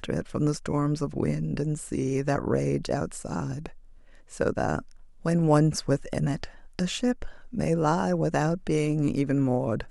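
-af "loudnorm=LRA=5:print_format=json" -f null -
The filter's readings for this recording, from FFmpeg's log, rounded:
"input_i" : "-27.1",
"input_tp" : "-8.0",
"input_lra" : "2.9",
"input_thresh" : "-37.3",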